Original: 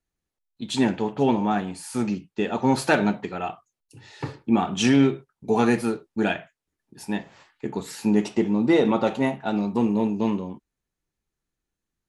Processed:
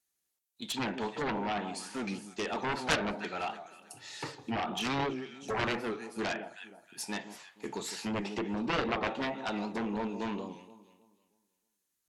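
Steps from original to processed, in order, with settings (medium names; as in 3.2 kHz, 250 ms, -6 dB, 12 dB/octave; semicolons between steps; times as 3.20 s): RIAA curve recording; echo whose repeats swap between lows and highs 158 ms, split 1.1 kHz, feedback 53%, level -13 dB; low-pass that closes with the level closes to 1.9 kHz, closed at -21.5 dBFS; Chebyshev shaper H 7 -8 dB, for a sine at -7 dBFS; warped record 78 rpm, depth 100 cents; trim -8 dB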